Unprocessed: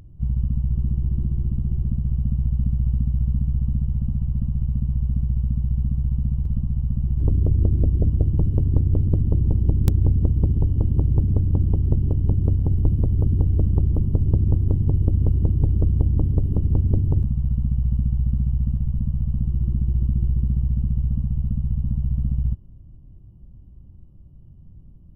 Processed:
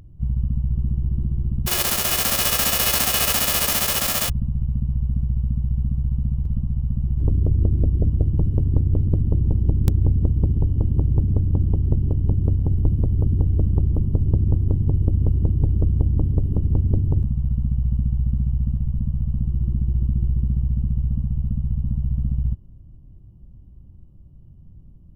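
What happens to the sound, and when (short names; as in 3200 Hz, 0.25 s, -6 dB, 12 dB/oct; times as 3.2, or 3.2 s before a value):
1.66–4.28 spectral whitening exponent 0.1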